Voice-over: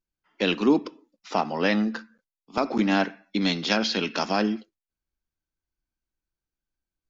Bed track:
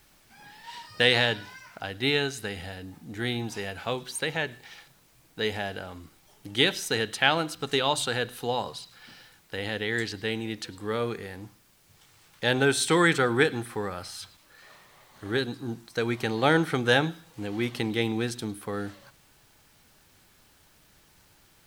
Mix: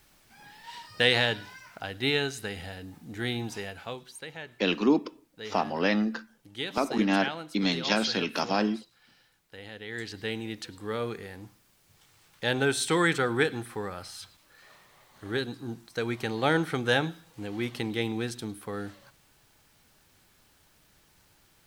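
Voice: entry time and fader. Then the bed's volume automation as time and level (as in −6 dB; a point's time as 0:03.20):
4.20 s, −2.5 dB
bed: 0:03.54 −1.5 dB
0:04.19 −12 dB
0:09.79 −12 dB
0:10.21 −3 dB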